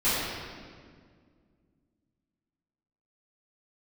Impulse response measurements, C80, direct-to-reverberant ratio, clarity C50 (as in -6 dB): -0.5 dB, -14.5 dB, -2.5 dB